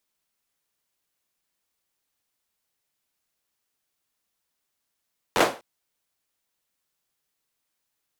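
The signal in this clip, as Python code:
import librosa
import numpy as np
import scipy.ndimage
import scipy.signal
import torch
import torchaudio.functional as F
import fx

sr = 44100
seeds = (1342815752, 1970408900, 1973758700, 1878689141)

y = fx.drum_clap(sr, seeds[0], length_s=0.25, bursts=5, spacing_ms=11, hz=550.0, decay_s=0.32)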